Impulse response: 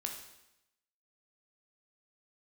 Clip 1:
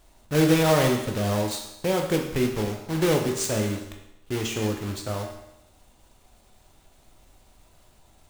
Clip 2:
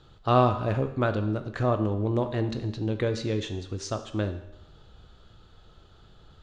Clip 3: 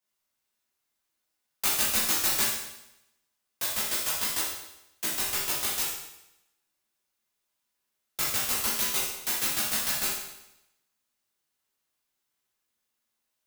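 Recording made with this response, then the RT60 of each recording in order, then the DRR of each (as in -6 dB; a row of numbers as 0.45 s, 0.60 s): 1; 0.85 s, 0.85 s, 0.85 s; 2.0 dB, 8.0 dB, -7.0 dB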